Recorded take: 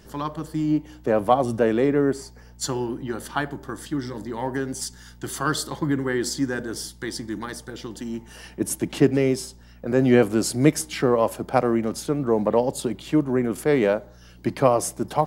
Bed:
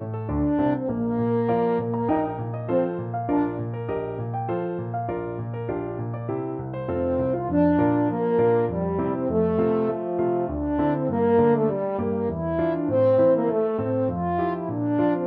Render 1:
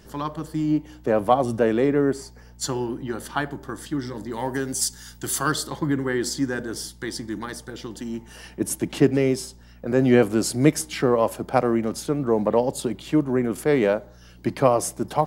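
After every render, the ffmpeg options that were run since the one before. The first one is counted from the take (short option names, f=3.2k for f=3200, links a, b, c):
-filter_complex "[0:a]asettb=1/sr,asplit=3[a][b][c];[a]atrim=end=4.314[d];[b]atrim=start=4.31:end=5.52,asetpts=PTS-STARTPTS,afade=t=in:d=0.004:c=qsin,afade=t=out:st=1.206:d=0.004:c=qsin,highshelf=f=4.4k:g=10[e];[c]atrim=start=5.516[f];[d][e]acrossfade=d=0.004:c1=hsin:c2=qsin[g];[g][f]acrossfade=d=0.004:c1=qsin:c2=hsin"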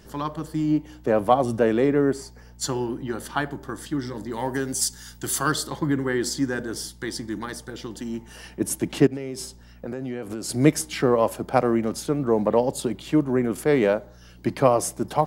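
-filter_complex "[0:a]asplit=3[a][b][c];[a]afade=t=out:st=9.06:d=0.02[d];[b]acompressor=threshold=-27dB:ratio=12:attack=3.2:release=140:knee=1:detection=peak,afade=t=in:st=9.06:d=0.02,afade=t=out:st=10.48:d=0.02[e];[c]afade=t=in:st=10.48:d=0.02[f];[d][e][f]amix=inputs=3:normalize=0"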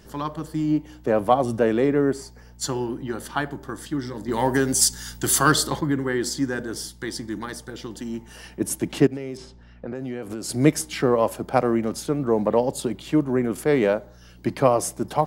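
-filter_complex "[0:a]asettb=1/sr,asplit=3[a][b][c];[a]atrim=end=4.284[d];[b]atrim=start=4.28:end=5.81,asetpts=PTS-STARTPTS,afade=t=in:d=0.004:c=qsin,afade=t=out:st=1.526:d=0.004:c=qsin,acontrast=54[e];[c]atrim=start=5.806[f];[d][e]acrossfade=d=0.004:c1=hsin:c2=qsin[g];[g][f]acrossfade=d=0.004:c1=qsin:c2=hsin,asettb=1/sr,asplit=3[h][i][j];[h]atrim=end=9.374[k];[i]atrim=start=9.37:end=9.95,asetpts=PTS-STARTPTS,afade=t=in:d=0.004:c=qsin,afade=t=out:st=0.576:d=0.004:c=qsin,lowpass=3.3k[l];[j]atrim=start=9.946[m];[k][l]acrossfade=d=0.004:c1=hsin:c2=qsin[n];[n][m]acrossfade=d=0.004:c1=qsin:c2=hsin"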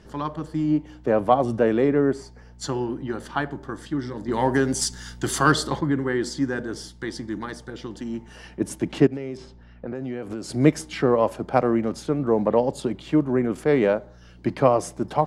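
-af "lowpass=9.9k,aemphasis=mode=reproduction:type=cd"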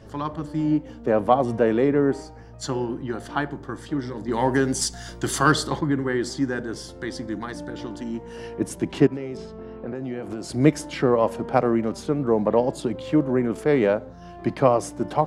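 -filter_complex "[1:a]volume=-17.5dB[a];[0:a][a]amix=inputs=2:normalize=0"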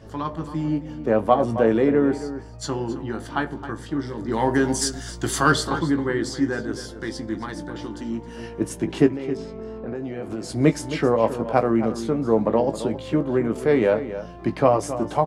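-filter_complex "[0:a]asplit=2[a][b];[b]adelay=18,volume=-8.5dB[c];[a][c]amix=inputs=2:normalize=0,asplit=2[d][e];[e]adelay=268.2,volume=-12dB,highshelf=f=4k:g=-6.04[f];[d][f]amix=inputs=2:normalize=0"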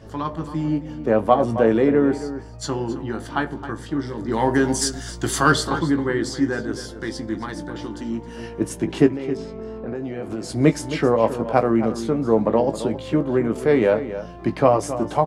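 -af "volume=1.5dB"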